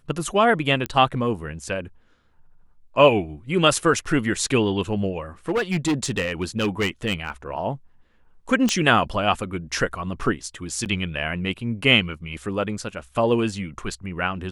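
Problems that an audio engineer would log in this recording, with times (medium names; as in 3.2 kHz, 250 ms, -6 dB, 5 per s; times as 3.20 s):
0.86 s: pop -11 dBFS
5.49–7.30 s: clipped -17.5 dBFS
8.69 s: pop -7 dBFS
10.85–10.86 s: dropout 8.5 ms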